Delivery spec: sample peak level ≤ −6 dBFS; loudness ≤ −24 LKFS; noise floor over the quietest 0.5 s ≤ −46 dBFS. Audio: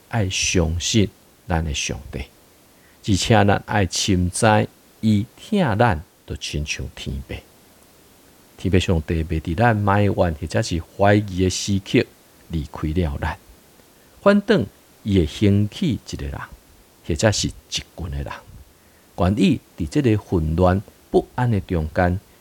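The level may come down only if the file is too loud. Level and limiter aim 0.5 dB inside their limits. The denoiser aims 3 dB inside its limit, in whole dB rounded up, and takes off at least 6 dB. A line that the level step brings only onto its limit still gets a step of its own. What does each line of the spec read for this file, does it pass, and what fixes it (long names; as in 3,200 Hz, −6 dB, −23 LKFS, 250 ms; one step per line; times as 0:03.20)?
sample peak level −3.5 dBFS: out of spec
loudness −21.0 LKFS: out of spec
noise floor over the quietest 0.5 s −52 dBFS: in spec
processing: level −3.5 dB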